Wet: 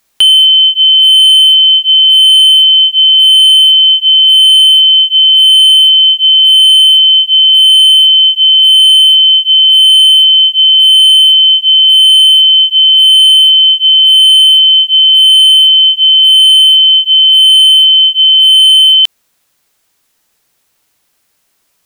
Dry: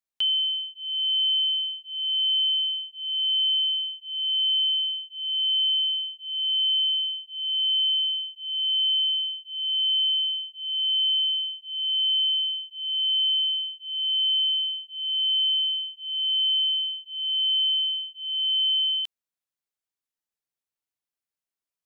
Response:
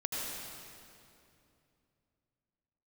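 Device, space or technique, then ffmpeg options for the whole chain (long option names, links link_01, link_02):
loud club master: -af "acompressor=threshold=-30dB:ratio=1.5,asoftclip=type=hard:threshold=-25dB,alimiter=level_in=33dB:limit=-1dB:release=50:level=0:latency=1,volume=-1dB"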